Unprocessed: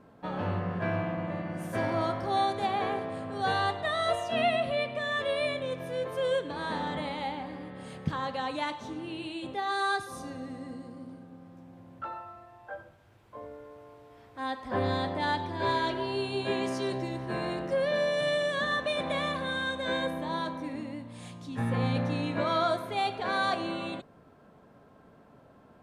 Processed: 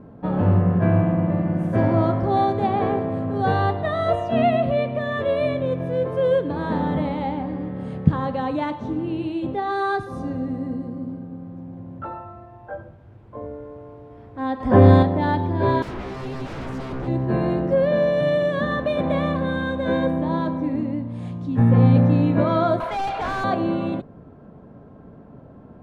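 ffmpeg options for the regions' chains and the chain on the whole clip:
ffmpeg -i in.wav -filter_complex "[0:a]asettb=1/sr,asplit=3[link_01][link_02][link_03];[link_01]atrim=end=14.604[link_04];[link_02]atrim=start=14.6:end=15.03,asetpts=PTS-STARTPTS,afade=type=in:duration=0.004:curve=qsin,afade=type=out:start_time=0.426:duration=0.004:curve=qsin,highshelf=frequency=4800:gain=6,bandreject=frequency=4000:width=9.8,acontrast=38[link_05];[link_03]atrim=start=15.026[link_06];[link_04][link_05]acrossfade=duration=0.004:curve1=hsin:curve2=qsin[link_07];[link_07][link_06]acrossfade=duration=0.004:curve1=qsin:curve2=hsin,asettb=1/sr,asplit=3[link_08][link_09][link_10];[link_08]atrim=end=15.824[link_11];[link_09]atrim=start=15.82:end=17.08,asetpts=PTS-STARTPTS,afade=type=in:duration=0.004:curve=qsin,afade=type=out:start_time=1.256:duration=0.004:curve=qsin,highpass=frequency=100:poles=1,equalizer=frequency=4500:width=4.8:gain=-5,aeval=exprs='0.0178*(abs(mod(val(0)/0.0178+3,4)-2)-1)':channel_layout=same[link_12];[link_10]atrim=start=17.076[link_13];[link_11][link_12]acrossfade=duration=0.004:curve1=hsin:curve2=qsin[link_14];[link_14][link_13]acrossfade=duration=0.004:curve1=qsin:curve2=hsin,asettb=1/sr,asplit=3[link_15][link_16][link_17];[link_15]atrim=end=22.804[link_18];[link_16]atrim=start=22.8:end=23.44,asetpts=PTS-STARTPTS,afade=type=in:duration=0.004:curve=qsin,afade=type=out:start_time=0.636:duration=0.004:curve=qsin,highpass=frequency=640:width=0.5412,highpass=frequency=640:width=1.3066,asplit=2[link_19][link_20];[link_20]highpass=frequency=720:poles=1,volume=19dB,asoftclip=type=tanh:threshold=-20dB[link_21];[link_19][link_21]amix=inputs=2:normalize=0,lowpass=frequency=5400:poles=1,volume=-6dB,asoftclip=type=hard:threshold=-29.5dB[link_22];[link_17]atrim=start=23.436[link_23];[link_18][link_22]acrossfade=duration=0.004:curve1=hsin:curve2=qsin[link_24];[link_24][link_23]acrossfade=duration=0.004:curve1=qsin:curve2=hsin,lowpass=frequency=1300:poles=1,lowshelf=frequency=460:gain=11.5,volume=5dB" out.wav

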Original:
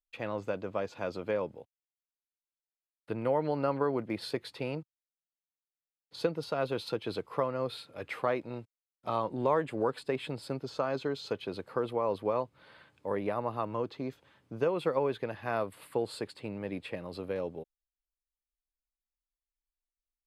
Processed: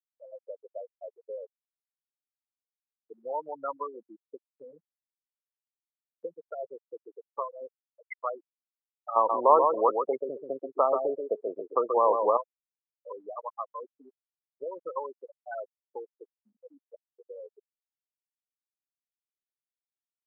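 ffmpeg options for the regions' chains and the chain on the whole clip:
ffmpeg -i in.wav -filter_complex "[0:a]asettb=1/sr,asplit=3[link_01][link_02][link_03];[link_01]atrim=end=9.164[link_04];[link_02]atrim=start=9.16:end=12.37,asetpts=PTS-STARTPTS,afade=type=in:duration=0.004:curve=qsin,afade=type=out:start_time=3.206:duration=0.004:curve=qsin,asuperstop=centerf=1600:order=4:qfactor=3.6,equalizer=frequency=410:width=0.33:gain=12.5,aecho=1:1:133|266|399:0.562|0.141|0.0351,atrim=end_sample=141561[link_05];[link_03]atrim=start=12.366[link_06];[link_04][link_05]acrossfade=duration=0.004:curve1=hsin:curve2=qsin[link_07];[link_07][link_06]acrossfade=duration=0.004:curve1=qsin:curve2=hsin,afftfilt=real='re*gte(hypot(re,im),0.112)':imag='im*gte(hypot(re,im),0.112)':win_size=1024:overlap=0.75,highpass=1100,volume=7dB" out.wav

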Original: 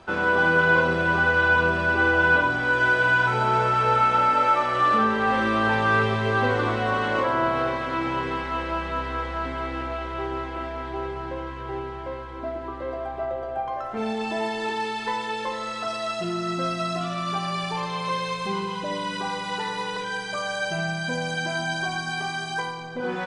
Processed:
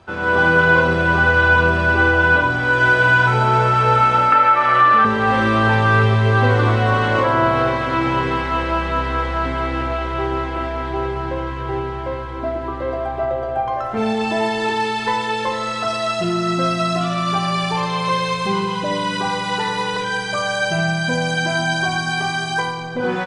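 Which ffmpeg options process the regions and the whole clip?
ffmpeg -i in.wav -filter_complex "[0:a]asettb=1/sr,asplit=3[link_01][link_02][link_03];[link_01]atrim=end=4.324[link_04];[link_02]atrim=start=4.32:end=5.05,asetpts=PTS-STARTPTS,afade=type=in:duration=0.004:curve=qsin,afade=type=out:start_time=0.726:duration=0.004:curve=qsin,equalizer=frequency=1700:width_type=o:width=2.4:gain=13.5,acrossover=split=420|1600[link_05][link_06][link_07];[link_05]acompressor=threshold=-35dB:ratio=4[link_08];[link_06]acompressor=threshold=-18dB:ratio=4[link_09];[link_07]acompressor=threshold=-27dB:ratio=4[link_10];[link_08][link_09][link_10]amix=inputs=3:normalize=0[link_11];[link_03]atrim=start=5.046[link_12];[link_04][link_11]acrossfade=duration=0.004:curve1=hsin:curve2=qsin[link_13];[link_13][link_12]acrossfade=duration=0.004:curve1=qsin:curve2=hsin,equalizer=frequency=100:width_type=o:width=0.64:gain=10.5,dynaudnorm=framelen=180:gausssize=3:maxgain=9dB,volume=-1.5dB" out.wav

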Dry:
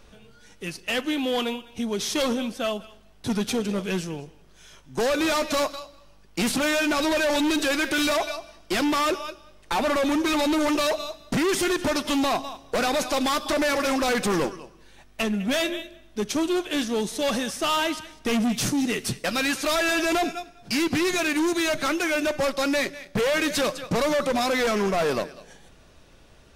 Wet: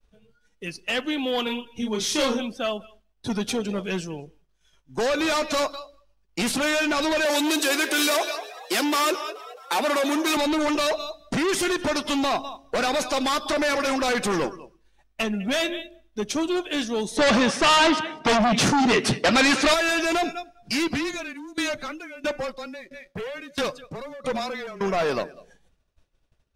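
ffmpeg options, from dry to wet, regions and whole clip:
ffmpeg -i in.wav -filter_complex "[0:a]asettb=1/sr,asplit=3[link_01][link_02][link_03];[link_01]atrim=end=1.434[link_04];[link_02]atrim=start=1.43:end=2.41,asetpts=PTS-STARTPTS,afade=type=in:duration=0.004:curve=qsin,afade=type=out:start_time=0.976:duration=0.004:curve=qsin,bandreject=frequency=690:width=8.1,asplit=2[link_05][link_06];[link_06]adelay=33,volume=-2.5dB[link_07];[link_05][link_07]amix=inputs=2:normalize=0,atrim=end_sample=43218[link_08];[link_03]atrim=start=2.406[link_09];[link_04][link_08]acrossfade=duration=0.004:curve1=hsin:curve2=qsin[link_10];[link_10][link_09]acrossfade=duration=0.004:curve1=qsin:curve2=hsin,asettb=1/sr,asplit=3[link_11][link_12][link_13];[link_11]atrim=end=7.254[link_14];[link_12]atrim=start=7.25:end=10.37,asetpts=PTS-STARTPTS,afade=type=in:duration=0.004:curve=qsin,afade=type=out:start_time=3.116:duration=0.004:curve=qsin,highpass=frequency=220:width=0.5412,highpass=frequency=220:width=1.3066,highshelf=frequency=7200:gain=9.5,asplit=8[link_15][link_16][link_17][link_18][link_19][link_20][link_21][link_22];[link_16]adelay=214,afreqshift=63,volume=-16dB[link_23];[link_17]adelay=428,afreqshift=126,volume=-19.9dB[link_24];[link_18]adelay=642,afreqshift=189,volume=-23.8dB[link_25];[link_19]adelay=856,afreqshift=252,volume=-27.6dB[link_26];[link_20]adelay=1070,afreqshift=315,volume=-31.5dB[link_27];[link_21]adelay=1284,afreqshift=378,volume=-35.4dB[link_28];[link_22]adelay=1498,afreqshift=441,volume=-39.3dB[link_29];[link_15][link_23][link_24][link_25][link_26][link_27][link_28][link_29]amix=inputs=8:normalize=0,atrim=end_sample=137592[link_30];[link_13]atrim=start=10.366[link_31];[link_14][link_30]acrossfade=duration=0.004:curve1=hsin:curve2=qsin[link_32];[link_32][link_31]acrossfade=duration=0.004:curve1=qsin:curve2=hsin,asettb=1/sr,asplit=3[link_33][link_34][link_35];[link_33]atrim=end=17.174[link_36];[link_34]atrim=start=17.17:end=19.74,asetpts=PTS-STARTPTS,afade=type=in:duration=0.004:curve=qsin,afade=type=out:start_time=2.566:duration=0.004:curve=qsin,highpass=150,aemphasis=mode=reproduction:type=75fm,aeval=exprs='0.178*sin(PI/2*2.82*val(0)/0.178)':channel_layout=same[link_37];[link_35]atrim=start=19.736[link_38];[link_36][link_37]acrossfade=duration=0.004:curve1=hsin:curve2=qsin[link_39];[link_39][link_38]acrossfade=duration=0.004:curve1=qsin:curve2=hsin,asettb=1/sr,asplit=3[link_40][link_41][link_42];[link_40]atrim=end=20.914[link_43];[link_41]atrim=start=20.91:end=24.81,asetpts=PTS-STARTPTS,afade=type=in:duration=0.004:curve=qsin,afade=type=out:start_time=3.896:duration=0.004:curve=qsin,afreqshift=-20,aeval=exprs='val(0)*pow(10,-19*if(lt(mod(1.5*n/s,1),2*abs(1.5)/1000),1-mod(1.5*n/s,1)/(2*abs(1.5)/1000),(mod(1.5*n/s,1)-2*abs(1.5)/1000)/(1-2*abs(1.5)/1000))/20)':channel_layout=same[link_44];[link_42]atrim=start=24.806[link_45];[link_43][link_44]acrossfade=duration=0.004:curve1=hsin:curve2=qsin[link_46];[link_46][link_45]acrossfade=duration=0.004:curve1=qsin:curve2=hsin,afftdn=noise_reduction=12:noise_floor=-42,lowshelf=frequency=360:gain=-3.5,agate=range=-33dB:threshold=-50dB:ratio=3:detection=peak,volume=1dB" out.wav

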